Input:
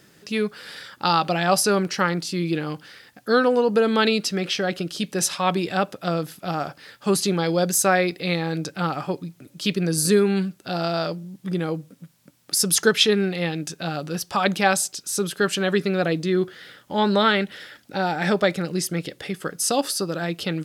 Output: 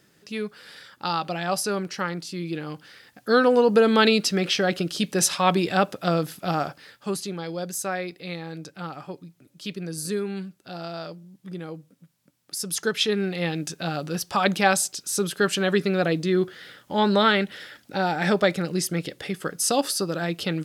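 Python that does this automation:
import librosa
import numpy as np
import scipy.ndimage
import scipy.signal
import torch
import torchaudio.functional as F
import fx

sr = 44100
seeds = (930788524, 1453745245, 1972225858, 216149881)

y = fx.gain(x, sr, db=fx.line((2.48, -6.5), (3.61, 1.5), (6.58, 1.5), (7.26, -10.0), (12.61, -10.0), (13.52, -0.5)))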